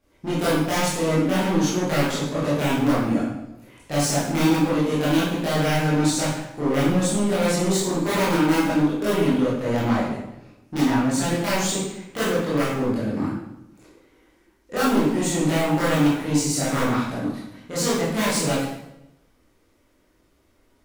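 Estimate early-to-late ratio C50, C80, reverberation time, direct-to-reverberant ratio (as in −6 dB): 0.0 dB, 3.5 dB, 0.85 s, −10.0 dB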